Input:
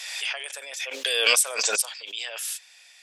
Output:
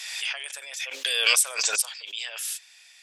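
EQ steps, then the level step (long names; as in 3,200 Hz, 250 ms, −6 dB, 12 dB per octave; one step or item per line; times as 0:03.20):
high-pass filter 310 Hz 12 dB per octave
parametric band 470 Hz −7 dB 1.9 octaves
0.0 dB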